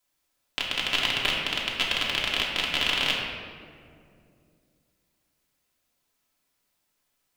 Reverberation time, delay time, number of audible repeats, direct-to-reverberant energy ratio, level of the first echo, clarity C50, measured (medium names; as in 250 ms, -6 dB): 2.4 s, no echo, no echo, -4.5 dB, no echo, 1.0 dB